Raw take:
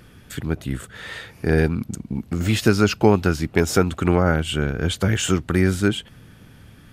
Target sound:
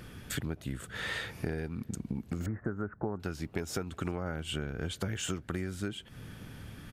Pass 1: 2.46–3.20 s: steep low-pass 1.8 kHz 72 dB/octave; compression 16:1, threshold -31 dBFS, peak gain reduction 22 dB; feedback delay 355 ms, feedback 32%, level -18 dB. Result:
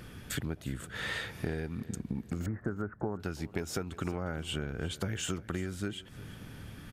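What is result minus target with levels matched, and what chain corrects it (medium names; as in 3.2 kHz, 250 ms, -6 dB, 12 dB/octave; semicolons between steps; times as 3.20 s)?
echo-to-direct +10.5 dB
2.46–3.20 s: steep low-pass 1.8 kHz 72 dB/octave; compression 16:1, threshold -31 dBFS, peak gain reduction 22 dB; feedback delay 355 ms, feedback 32%, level -28.5 dB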